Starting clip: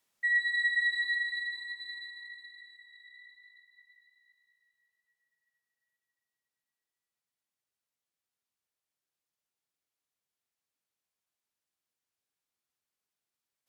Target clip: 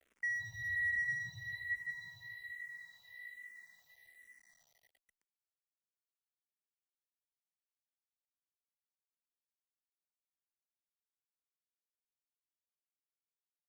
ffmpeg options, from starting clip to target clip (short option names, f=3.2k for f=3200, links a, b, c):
-filter_complex "[0:a]acrossover=split=2200|3500[a][b][c];[c]acompressor=threshold=-60dB:ratio=16[d];[a][b][d]amix=inputs=3:normalize=0,aemphasis=mode=reproduction:type=cd,bandreject=f=60:t=h:w=6,bandreject=f=120:t=h:w=6,bandreject=f=180:t=h:w=6,bandreject=f=240:t=h:w=6,bandreject=f=300:t=h:w=6,bandreject=f=360:t=h:w=6,bandreject=f=420:t=h:w=6,bandreject=f=480:t=h:w=6,asoftclip=type=tanh:threshold=-38dB,firequalizer=gain_entry='entry(490,0);entry(720,12);entry(1100,-22);entry(2200,-3);entry(4500,-20);entry(7000,-28)':delay=0.05:min_phase=1,asplit=2[e][f];[f]aecho=0:1:787:0.251[g];[e][g]amix=inputs=2:normalize=0,acontrast=82,acrusher=bits=11:mix=0:aa=0.000001,asplit=2[h][i];[i]afreqshift=-1.2[j];[h][j]amix=inputs=2:normalize=1,volume=7dB"